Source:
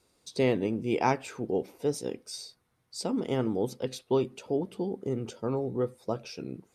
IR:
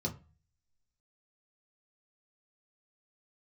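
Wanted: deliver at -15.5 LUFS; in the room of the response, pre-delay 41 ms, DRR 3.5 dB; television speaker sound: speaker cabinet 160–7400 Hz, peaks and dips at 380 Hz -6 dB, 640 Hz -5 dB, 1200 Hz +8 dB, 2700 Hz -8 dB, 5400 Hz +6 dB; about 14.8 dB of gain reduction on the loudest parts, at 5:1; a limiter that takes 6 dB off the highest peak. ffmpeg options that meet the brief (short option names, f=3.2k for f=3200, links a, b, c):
-filter_complex "[0:a]acompressor=threshold=-38dB:ratio=5,alimiter=level_in=8dB:limit=-24dB:level=0:latency=1,volume=-8dB,asplit=2[a][b];[1:a]atrim=start_sample=2205,adelay=41[c];[b][c]afir=irnorm=-1:irlink=0,volume=-6dB[d];[a][d]amix=inputs=2:normalize=0,highpass=f=160:w=0.5412,highpass=f=160:w=1.3066,equalizer=f=380:t=q:w=4:g=-6,equalizer=f=640:t=q:w=4:g=-5,equalizer=f=1.2k:t=q:w=4:g=8,equalizer=f=2.7k:t=q:w=4:g=-8,equalizer=f=5.4k:t=q:w=4:g=6,lowpass=f=7.4k:w=0.5412,lowpass=f=7.4k:w=1.3066,volume=25dB"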